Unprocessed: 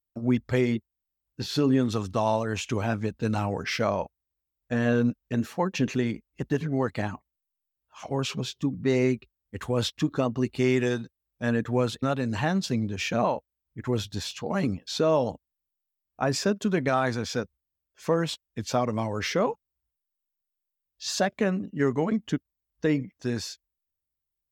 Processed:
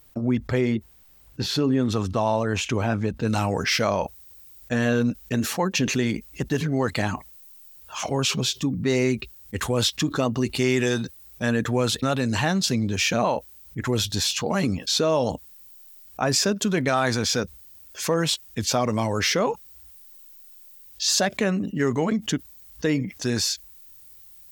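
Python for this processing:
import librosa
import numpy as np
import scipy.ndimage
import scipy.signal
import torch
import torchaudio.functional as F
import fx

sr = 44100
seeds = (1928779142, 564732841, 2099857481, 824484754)

y = fx.high_shelf(x, sr, hz=3200.0, db=fx.steps((0.0, -2.5), (3.27, 10.5)))
y = fx.env_flatten(y, sr, amount_pct=50)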